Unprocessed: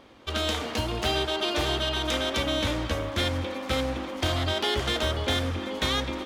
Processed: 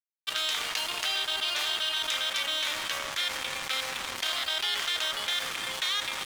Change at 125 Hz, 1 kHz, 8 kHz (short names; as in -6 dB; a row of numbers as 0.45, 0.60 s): -26.5, -4.5, +3.5 dB